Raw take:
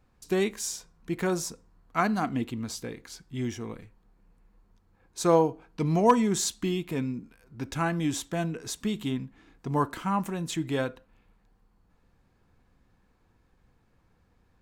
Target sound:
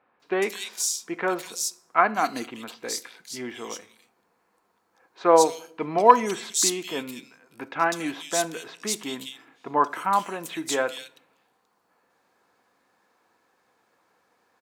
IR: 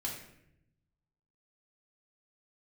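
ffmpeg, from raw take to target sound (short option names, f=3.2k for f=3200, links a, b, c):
-filter_complex "[0:a]highpass=520,acrossover=split=2800[a][b];[b]adelay=200[c];[a][c]amix=inputs=2:normalize=0,asplit=2[d][e];[1:a]atrim=start_sample=2205[f];[e][f]afir=irnorm=-1:irlink=0,volume=-17.5dB[g];[d][g]amix=inputs=2:normalize=0,volume=7dB"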